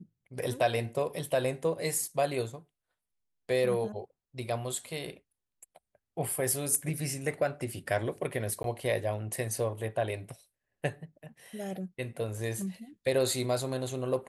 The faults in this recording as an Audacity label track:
8.630000	8.640000	gap 12 ms

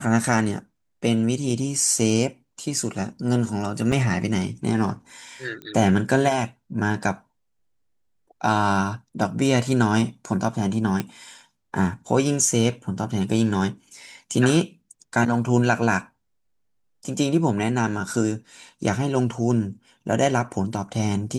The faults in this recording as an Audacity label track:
3.920000	3.920000	gap 4.5 ms
5.620000	5.620000	pop -23 dBFS
11.000000	11.000000	pop -12 dBFS

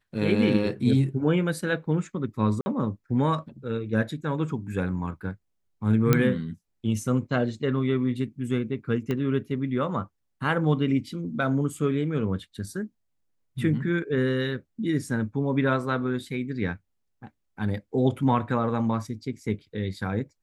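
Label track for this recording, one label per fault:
2.610000	2.660000	gap 50 ms
6.130000	6.130000	pop -6 dBFS
9.110000	9.110000	pop -17 dBFS

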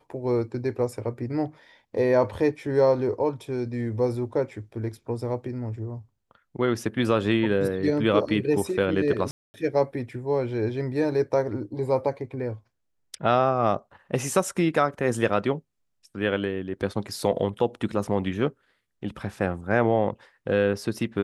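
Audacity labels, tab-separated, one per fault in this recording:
9.310000	9.540000	gap 0.23 s

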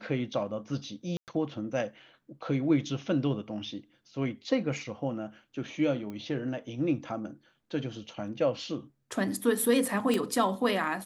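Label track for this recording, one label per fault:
1.170000	1.280000	gap 0.108 s
6.100000	6.100000	pop -28 dBFS
10.140000	10.140000	pop -16 dBFS

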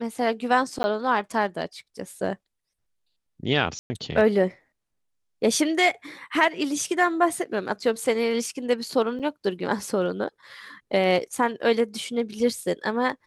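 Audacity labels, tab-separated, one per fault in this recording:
0.830000	0.840000	gap 10 ms
3.790000	3.900000	gap 0.11 s
9.190000	9.200000	gap 6.9 ms

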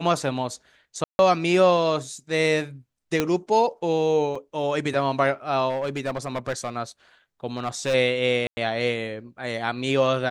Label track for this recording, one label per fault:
1.040000	1.190000	gap 0.151 s
3.200000	3.200000	pop -7 dBFS
4.350000	4.350000	gap 4.4 ms
5.690000	6.700000	clipped -22 dBFS
7.570000	7.950000	clipped -19.5 dBFS
8.470000	8.570000	gap 0.1 s

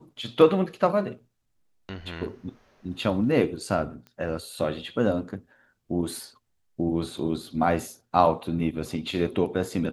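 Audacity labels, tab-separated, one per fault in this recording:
4.070000	4.070000	pop -31 dBFS

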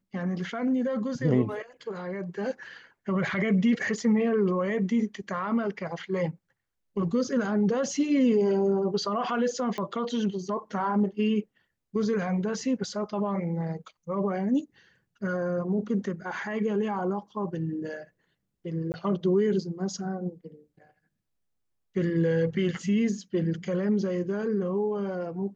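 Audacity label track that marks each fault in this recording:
9.780000	9.780000	pop -20 dBFS
18.920000	18.940000	gap 19 ms

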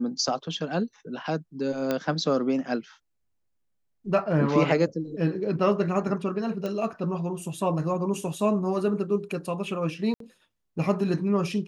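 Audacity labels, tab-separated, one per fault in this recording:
1.910000	1.910000	pop -13 dBFS
6.660000	6.660000	pop -19 dBFS
10.140000	10.200000	gap 63 ms

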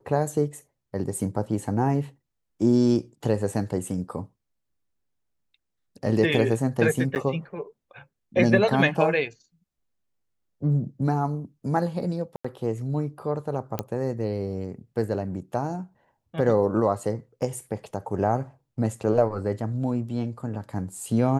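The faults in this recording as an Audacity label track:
7.150000	7.160000	gap 9.4 ms
12.360000	12.450000	gap 85 ms
13.790000	13.790000	pop -13 dBFS

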